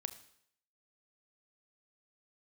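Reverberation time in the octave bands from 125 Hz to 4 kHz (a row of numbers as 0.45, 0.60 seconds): 0.65, 0.65, 0.70, 0.65, 0.65, 0.65 seconds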